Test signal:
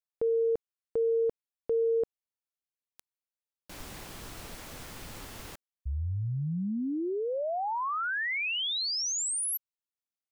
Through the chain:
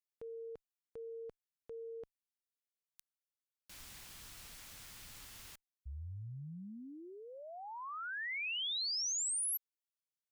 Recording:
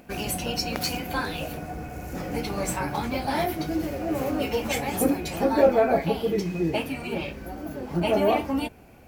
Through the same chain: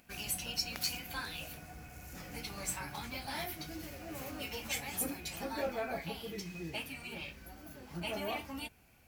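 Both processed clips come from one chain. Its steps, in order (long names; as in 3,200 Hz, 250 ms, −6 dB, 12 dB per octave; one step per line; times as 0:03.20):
guitar amp tone stack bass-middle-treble 5-5-5
level +1 dB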